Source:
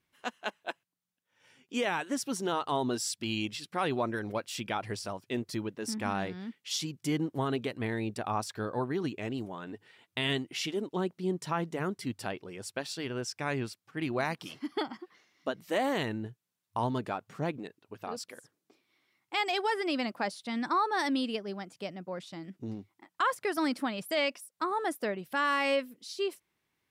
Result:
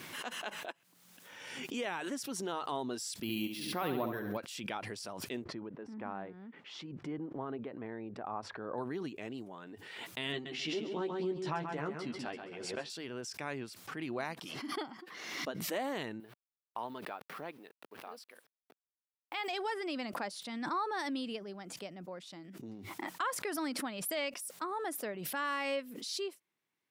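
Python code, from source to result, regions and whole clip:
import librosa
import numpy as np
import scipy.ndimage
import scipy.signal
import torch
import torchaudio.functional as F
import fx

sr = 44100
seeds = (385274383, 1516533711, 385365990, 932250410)

y = fx.chain(x, sr, fx.low_shelf(hz=320.0, db=7.0),
    fx.room_flutter(wall_m=11.8, rt60_s=0.59),
    fx.resample_bad(factor=3, down='filtered', up='hold'), at=(3.22, 4.37))
y = fx.chain(y, sr, fx.lowpass(hz=1300.0, slope=12),
    fx.low_shelf(hz=340.0, db=-4.0), at=(5.44, 8.78))
y = fx.chain(y, sr, fx.lowpass(hz=4900.0, slope=12),
    fx.doubler(ms=13.0, db=-4.0),
    fx.echo_feedback(ms=134, feedback_pct=29, wet_db=-7.0), at=(10.32, 12.9))
y = fx.chain(y, sr, fx.delta_hold(step_db=-55.0),
    fx.highpass(hz=620.0, slope=6),
    fx.peak_eq(hz=7000.0, db=-12.5, octaves=0.75), at=(16.2, 19.48))
y = scipy.signal.sosfilt(scipy.signal.butter(2, 160.0, 'highpass', fs=sr, output='sos'), y)
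y = fx.pre_swell(y, sr, db_per_s=37.0)
y = y * librosa.db_to_amplitude(-7.0)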